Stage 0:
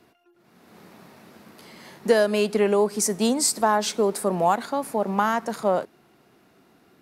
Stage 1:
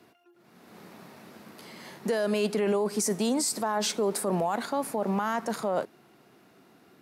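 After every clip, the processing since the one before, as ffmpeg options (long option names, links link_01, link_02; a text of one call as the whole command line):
ffmpeg -i in.wav -af "highpass=92,alimiter=limit=-19dB:level=0:latency=1:release=14" out.wav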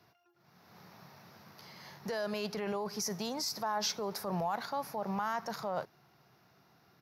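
ffmpeg -i in.wav -af "firequalizer=gain_entry='entry(140,0);entry(240,-15);entry(820,-4);entry(3000,-8);entry(5600,1);entry(8300,-25);entry(12000,-4)':delay=0.05:min_phase=1" out.wav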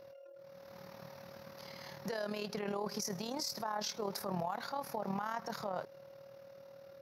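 ffmpeg -i in.wav -af "aeval=exprs='val(0)+0.00224*sin(2*PI*550*n/s)':channel_layout=same,alimiter=level_in=6.5dB:limit=-24dB:level=0:latency=1:release=171,volume=-6.5dB,tremolo=f=38:d=0.621,volume=4dB" out.wav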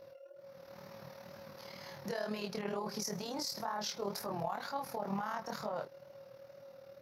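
ffmpeg -i in.wav -af "flanger=delay=18:depth=7.3:speed=2.1,volume=3dB" out.wav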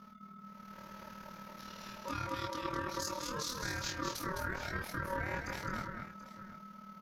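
ffmpeg -i in.wav -filter_complex "[0:a]aeval=exprs='val(0)*sin(2*PI*750*n/s)':channel_layout=same,asplit=2[link_01][link_02];[link_02]aecho=0:1:210|733:0.562|0.178[link_03];[link_01][link_03]amix=inputs=2:normalize=0,volume=2dB" out.wav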